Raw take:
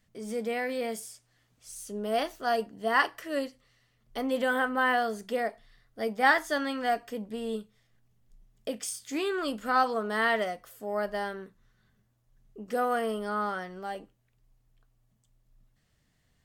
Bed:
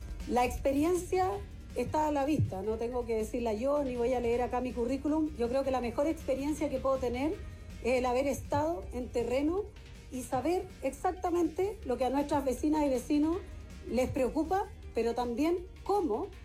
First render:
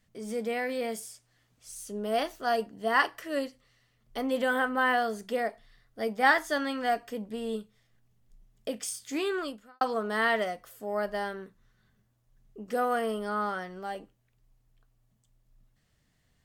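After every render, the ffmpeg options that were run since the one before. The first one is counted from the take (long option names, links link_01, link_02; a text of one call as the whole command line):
ffmpeg -i in.wav -filter_complex "[0:a]asplit=2[link_01][link_02];[link_01]atrim=end=9.81,asetpts=PTS-STARTPTS,afade=type=out:start_time=9.37:duration=0.44:curve=qua[link_03];[link_02]atrim=start=9.81,asetpts=PTS-STARTPTS,afade=type=in:duration=0.004:curve=hsin[link_04];[link_03][link_04]concat=n=2:v=0:a=1" out.wav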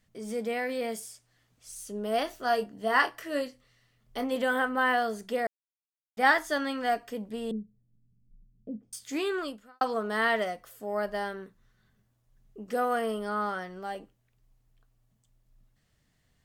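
ffmpeg -i in.wav -filter_complex "[0:a]asettb=1/sr,asplit=3[link_01][link_02][link_03];[link_01]atrim=end=2.254[link_04];[link_02]atrim=start=2.25:end=4.36,asetpts=PTS-STARTPTS,afade=type=in:duration=0.004:curve=qsin,afade=type=out:start_time=2.106:duration=0.004:curve=qsin,asplit=2[link_05][link_06];[link_06]adelay=24,volume=-8.5dB[link_07];[link_05][link_07]amix=inputs=2:normalize=0,atrim=end_sample=93051[link_08];[link_03]atrim=start=4.356[link_09];[link_04][link_08]acrossfade=duration=0.004:curve1=hsin:curve2=qsin[link_10];[link_10][link_09]acrossfade=duration=0.004:curve1=qsin:curve2=hsin,asettb=1/sr,asplit=3[link_11][link_12][link_13];[link_11]atrim=end=7.514[link_14];[link_12]atrim=start=7.51:end=8.93,asetpts=PTS-STARTPTS,afade=type=in:duration=0.004:curve=qsin,afade=type=out:start_time=1.416:duration=0.004:curve=qsin,lowpass=frequency=220:width_type=q:width=1.5[link_15];[link_13]atrim=start=8.926[link_16];[link_14][link_15]acrossfade=duration=0.004:curve1=hsin:curve2=qsin[link_17];[link_17][link_16]acrossfade=duration=0.004:curve1=qsin:curve2=hsin,asplit=3[link_18][link_19][link_20];[link_18]atrim=end=5.47,asetpts=PTS-STARTPTS,afade=type=out:start_time=5.466:duration=0.004:curve=hsin[link_21];[link_19]atrim=start=5.47:end=6.17,asetpts=PTS-STARTPTS,volume=0[link_22];[link_20]atrim=start=6.17,asetpts=PTS-STARTPTS,afade=type=in:duration=0.004:curve=hsin[link_23];[link_21][link_22][link_23]concat=n=3:v=0:a=1" out.wav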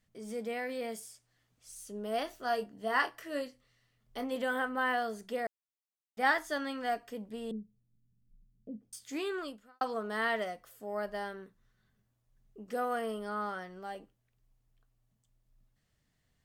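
ffmpeg -i in.wav -af "volume=-5.5dB" out.wav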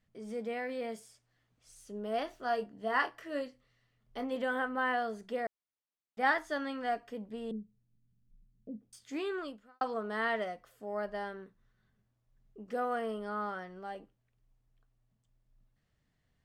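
ffmpeg -i in.wav -af "aemphasis=mode=reproduction:type=50kf" out.wav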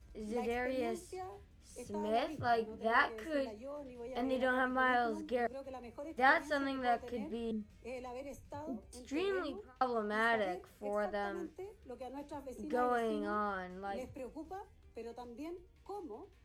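ffmpeg -i in.wav -i bed.wav -filter_complex "[1:a]volume=-16dB[link_01];[0:a][link_01]amix=inputs=2:normalize=0" out.wav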